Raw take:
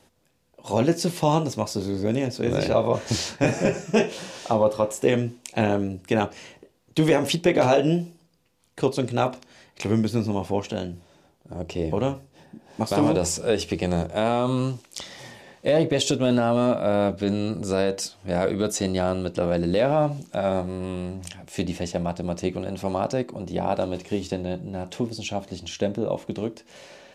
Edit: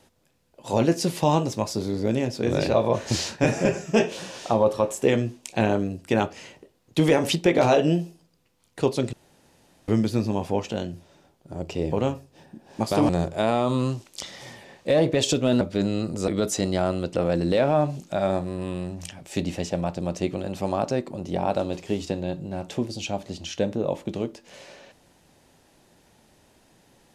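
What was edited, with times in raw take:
0:09.13–0:09.88: fill with room tone
0:13.09–0:13.87: remove
0:16.39–0:17.08: remove
0:17.75–0:18.50: remove

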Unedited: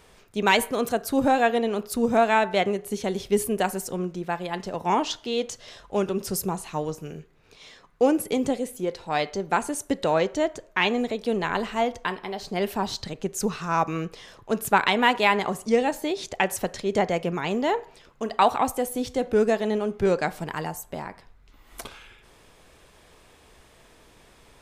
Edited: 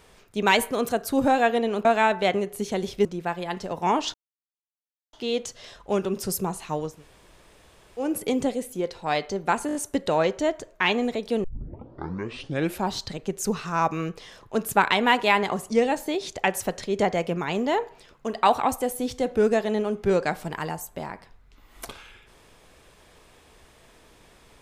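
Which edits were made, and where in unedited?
0:01.85–0:02.17: remove
0:03.37–0:04.08: remove
0:05.17: splice in silence 0.99 s
0:06.98–0:08.10: fill with room tone, crossfade 0.24 s
0:09.71: stutter 0.02 s, 5 plays
0:11.40: tape start 1.47 s

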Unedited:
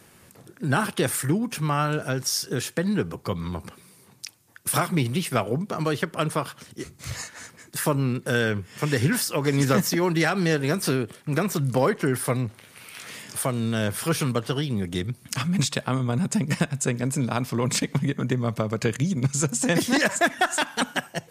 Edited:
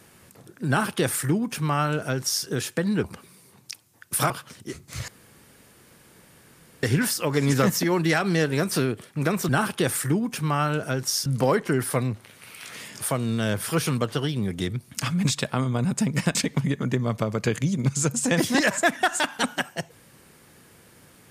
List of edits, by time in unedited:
0:00.68–0:02.45: duplicate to 0:11.60
0:03.04–0:03.58: remove
0:04.84–0:06.41: remove
0:07.19–0:08.94: fill with room tone
0:16.69–0:17.73: remove

